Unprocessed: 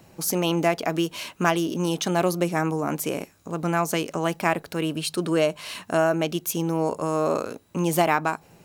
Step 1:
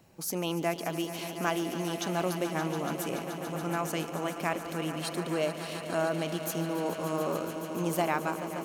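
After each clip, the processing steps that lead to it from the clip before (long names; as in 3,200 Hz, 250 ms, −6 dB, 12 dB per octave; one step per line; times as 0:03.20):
echo that builds up and dies away 143 ms, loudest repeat 5, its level −13 dB
level −8.5 dB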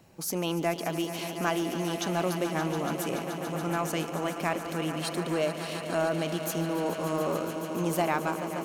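high-shelf EQ 12,000 Hz −3 dB
in parallel at −9 dB: hard clipping −30 dBFS, distortion −9 dB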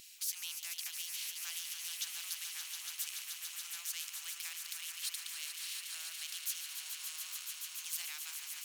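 inverse Chebyshev high-pass filter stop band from 510 Hz, stop band 80 dB
every bin compressed towards the loudest bin 2 to 1
level −2 dB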